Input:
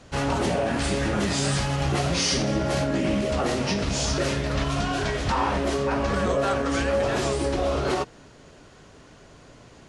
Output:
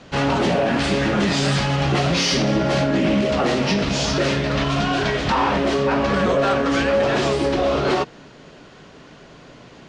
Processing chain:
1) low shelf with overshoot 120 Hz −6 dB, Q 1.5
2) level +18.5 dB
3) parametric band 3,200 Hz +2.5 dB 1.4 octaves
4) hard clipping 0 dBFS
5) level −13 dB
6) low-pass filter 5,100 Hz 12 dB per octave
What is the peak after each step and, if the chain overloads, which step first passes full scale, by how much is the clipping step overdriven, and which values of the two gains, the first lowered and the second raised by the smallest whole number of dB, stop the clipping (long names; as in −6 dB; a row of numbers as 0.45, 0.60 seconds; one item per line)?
−11.5, +7.0, +8.0, 0.0, −13.0, −12.0 dBFS
step 2, 8.0 dB
step 2 +10.5 dB, step 5 −5 dB